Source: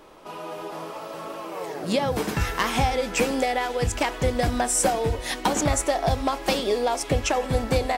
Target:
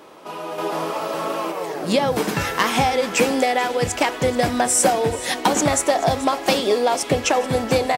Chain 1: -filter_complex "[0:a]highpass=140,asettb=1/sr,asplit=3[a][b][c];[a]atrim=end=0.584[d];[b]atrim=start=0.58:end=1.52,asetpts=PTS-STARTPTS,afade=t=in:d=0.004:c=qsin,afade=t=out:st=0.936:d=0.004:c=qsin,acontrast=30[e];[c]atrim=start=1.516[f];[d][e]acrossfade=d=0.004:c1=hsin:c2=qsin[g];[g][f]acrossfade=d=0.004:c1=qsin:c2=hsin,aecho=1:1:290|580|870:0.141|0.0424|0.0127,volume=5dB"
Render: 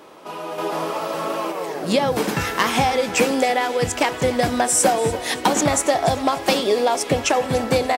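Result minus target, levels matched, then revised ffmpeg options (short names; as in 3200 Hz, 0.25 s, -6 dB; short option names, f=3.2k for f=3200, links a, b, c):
echo 0.143 s early
-filter_complex "[0:a]highpass=140,asettb=1/sr,asplit=3[a][b][c];[a]atrim=end=0.584[d];[b]atrim=start=0.58:end=1.52,asetpts=PTS-STARTPTS,afade=t=in:d=0.004:c=qsin,afade=t=out:st=0.936:d=0.004:c=qsin,acontrast=30[e];[c]atrim=start=1.516[f];[d][e]acrossfade=d=0.004:c1=hsin:c2=qsin[g];[g][f]acrossfade=d=0.004:c1=qsin:c2=hsin,aecho=1:1:433|866|1299:0.141|0.0424|0.0127,volume=5dB"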